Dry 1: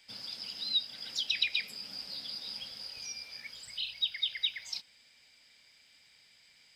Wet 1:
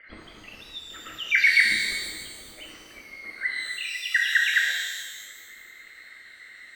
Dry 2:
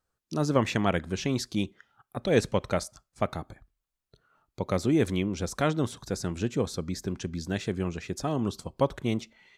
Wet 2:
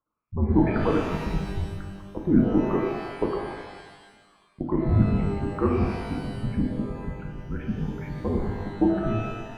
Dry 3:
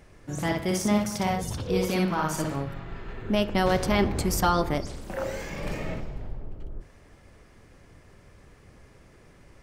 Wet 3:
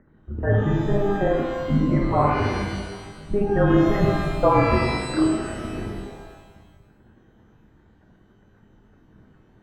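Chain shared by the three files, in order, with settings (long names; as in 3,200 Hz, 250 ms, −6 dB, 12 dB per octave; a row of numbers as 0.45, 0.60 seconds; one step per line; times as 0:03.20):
spectral envelope exaggerated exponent 2
single-sideband voice off tune −220 Hz 250–2,100 Hz
reverb with rising layers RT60 1.4 s, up +12 semitones, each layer −8 dB, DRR −0.5 dB
normalise the peak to −6 dBFS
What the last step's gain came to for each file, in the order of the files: +22.5, +2.0, +6.0 decibels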